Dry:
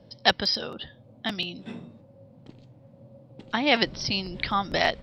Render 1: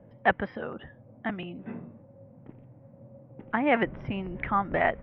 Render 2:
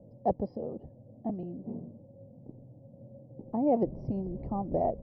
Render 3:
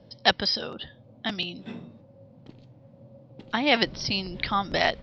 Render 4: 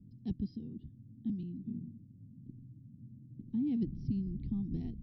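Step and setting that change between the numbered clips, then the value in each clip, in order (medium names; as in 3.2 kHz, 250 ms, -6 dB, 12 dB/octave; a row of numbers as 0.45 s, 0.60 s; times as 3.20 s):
inverse Chebyshev low-pass, stop band from: 4.1 kHz, 1.4 kHz, 11 kHz, 540 Hz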